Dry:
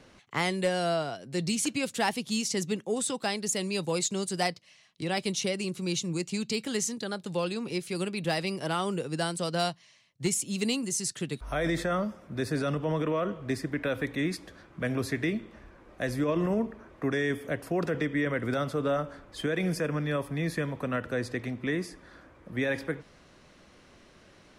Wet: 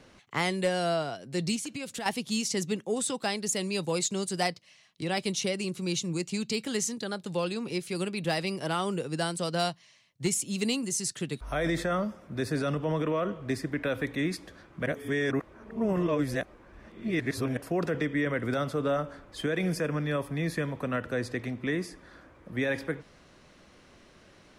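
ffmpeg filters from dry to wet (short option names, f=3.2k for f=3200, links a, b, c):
-filter_complex "[0:a]asettb=1/sr,asplit=3[a][b][c];[a]atrim=end=1.564[d];[b]atrim=start=1.56:end=2.06,asetpts=PTS-STARTPTS,afade=t=in:d=0.004:c=qsin,afade=t=out:st=0.496:d=0.004:c=qsin,acompressor=threshold=-33dB:ratio=6:attack=3.2:release=140:knee=1:detection=peak[e];[c]atrim=start=2.056[f];[d][e]acrossfade=d=0.004:c1=hsin:c2=qsin[g];[g][f]acrossfade=d=0.004:c1=qsin:c2=hsin,asplit=3[h][i][j];[h]atrim=end=14.862[k];[i]atrim=start=14.858:end=17.572,asetpts=PTS-STARTPTS,areverse[l];[j]atrim=start=17.568[m];[k][l]acrossfade=d=0.004:c1=hsin:c2=hsin[n];[n][m]acrossfade=d=0.004:c1=hsin:c2=hsin"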